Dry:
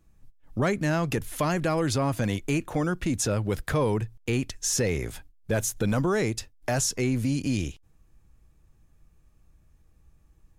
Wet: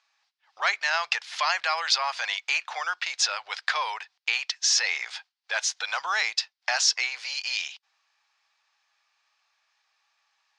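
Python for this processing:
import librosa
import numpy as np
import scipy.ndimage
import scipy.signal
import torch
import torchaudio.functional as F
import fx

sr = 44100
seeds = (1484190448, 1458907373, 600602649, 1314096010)

y = scipy.signal.sosfilt(scipy.signal.ellip(3, 1.0, 50, [790.0, 4900.0], 'bandpass', fs=sr, output='sos'), x)
y = fx.tilt_eq(y, sr, slope=4.0)
y = y * 10.0 ** (5.0 / 20.0)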